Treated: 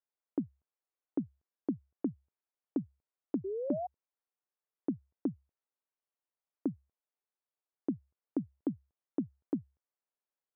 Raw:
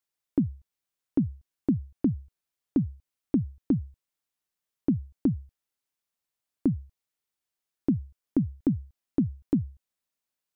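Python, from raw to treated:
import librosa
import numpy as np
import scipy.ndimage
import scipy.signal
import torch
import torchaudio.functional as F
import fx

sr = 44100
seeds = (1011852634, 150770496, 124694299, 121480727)

y = fx.ladder_bandpass(x, sr, hz=510.0, resonance_pct=45)
y = fx.peak_eq(y, sr, hz=430.0, db=-13.0, octaves=1.5)
y = fx.spec_paint(y, sr, seeds[0], shape='rise', start_s=3.44, length_s=0.43, low_hz=370.0, high_hz=750.0, level_db=-51.0)
y = F.gain(torch.from_numpy(y), 15.0).numpy()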